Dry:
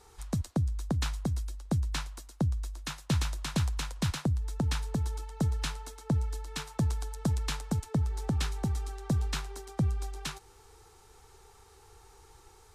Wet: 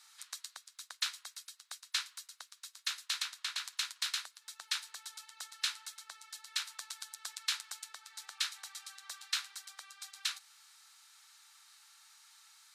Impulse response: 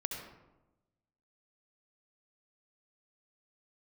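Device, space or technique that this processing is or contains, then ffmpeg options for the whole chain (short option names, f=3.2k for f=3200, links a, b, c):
headphones lying on a table: -filter_complex "[0:a]highpass=f=1.4k:w=0.5412,highpass=f=1.4k:w=1.3066,equalizer=f=4.1k:t=o:w=0.55:g=5.5,asettb=1/sr,asplit=3[a][b][c];[a]atrim=end=3.224[d];[b]atrim=start=3.22:end=3.65,asetpts=PTS-STARTPTS,afade=t=in:d=0.004:c=qsin,afade=t=out:st=0.426:d=0.004:c=qsin,highshelf=f=4.8k:g=-6.5[e];[c]atrim=start=3.646[f];[d][e]acrossfade=d=0.004:c1=hsin:c2=qsin[g];[g][f]acrossfade=d=0.004:c1=qsin:c2=hsin,volume=1dB"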